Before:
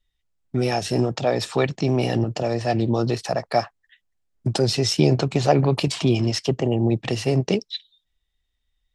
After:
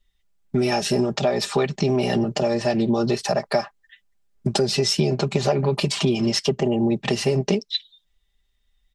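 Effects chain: comb 5 ms, depth 80%; compression 6:1, threshold -20 dBFS, peak gain reduction 10.5 dB; trim +3 dB

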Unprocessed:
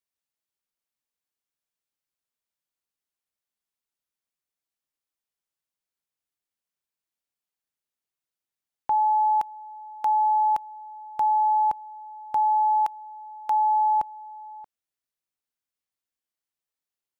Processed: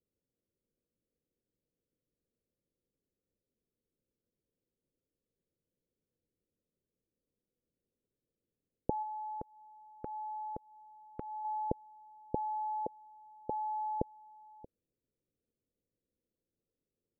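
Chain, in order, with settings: elliptic low-pass 510 Hz, stop band 60 dB; 9.02–11.45 s: compression, threshold -55 dBFS, peak gain reduction 11 dB; trim +15.5 dB

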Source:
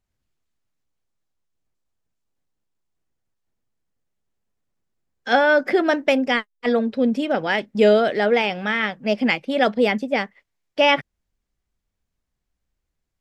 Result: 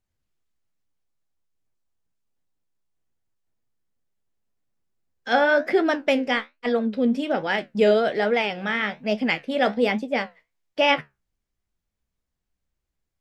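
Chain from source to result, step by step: flange 1.2 Hz, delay 9 ms, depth 8.5 ms, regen +64%; trim +1.5 dB

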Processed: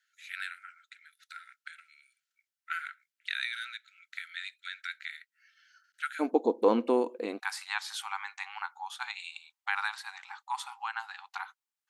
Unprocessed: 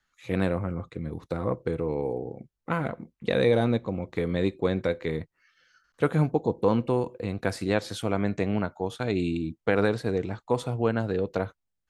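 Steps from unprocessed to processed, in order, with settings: brick-wall FIR high-pass 1.3 kHz, from 6.19 s 220 Hz, from 7.38 s 760 Hz

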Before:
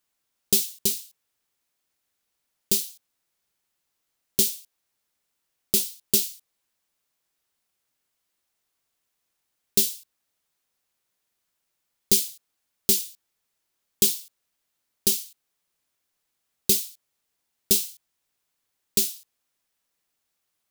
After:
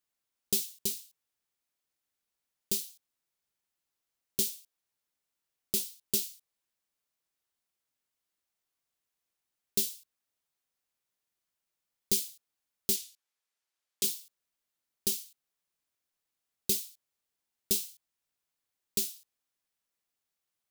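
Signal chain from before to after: 12.96–14.04 s: frequency weighting A; trim -8.5 dB

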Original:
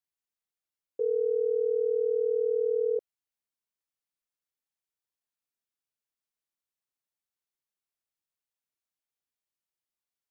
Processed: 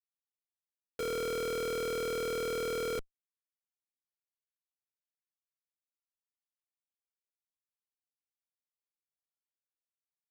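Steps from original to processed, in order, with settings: Schmitt trigger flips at -47 dBFS

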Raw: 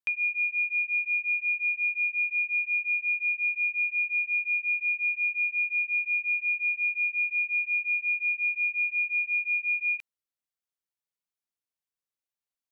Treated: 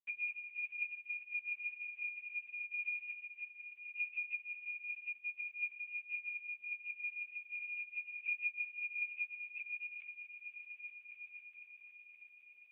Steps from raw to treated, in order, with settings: reverb removal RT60 0.97 s; peaking EQ 2.2 kHz +2.5 dB 0.86 oct; hum notches 50/100/150/200/250/300/350/400 Hz; in parallel at +1.5 dB: peak limiter -31.5 dBFS, peak gain reduction 11.5 dB; on the sum: bit crusher 11-bit; saturation -24.5 dBFS, distortion -14 dB; chorus voices 4, 0.16 Hz, delay 17 ms, depth 2.8 ms; on a send: echo with a slow build-up 126 ms, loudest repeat 8, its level -15 dB; on the sum: trim -6.5 dB; AMR-NB 4.75 kbps 8 kHz

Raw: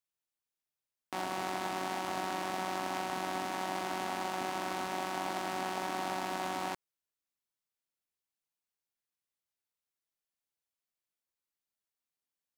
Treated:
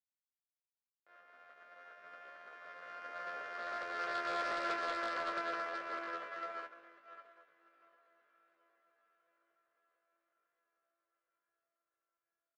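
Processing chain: Doppler pass-by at 4.63 s, 8 m/s, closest 6.7 m; echo that smears into a reverb 722 ms, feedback 62%, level -9.5 dB; pitch shift +10.5 st; low-pass 1.6 kHz 12 dB/octave; in parallel at -3 dB: sine folder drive 9 dB, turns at -26 dBFS; on the sum: bass shelf 250 Hz -10 dB; hum notches 50/100/150/200/250/300/350 Hz; upward expansion 2.5:1, over -44 dBFS; trim -4.5 dB

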